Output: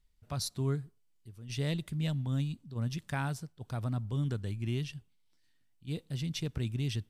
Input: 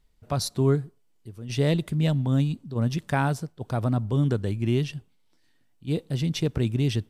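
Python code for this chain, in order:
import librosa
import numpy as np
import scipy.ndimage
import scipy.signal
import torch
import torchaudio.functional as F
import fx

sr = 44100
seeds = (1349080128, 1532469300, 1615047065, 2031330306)

y = fx.peak_eq(x, sr, hz=470.0, db=-8.5, octaves=2.8)
y = y * 10.0 ** (-5.5 / 20.0)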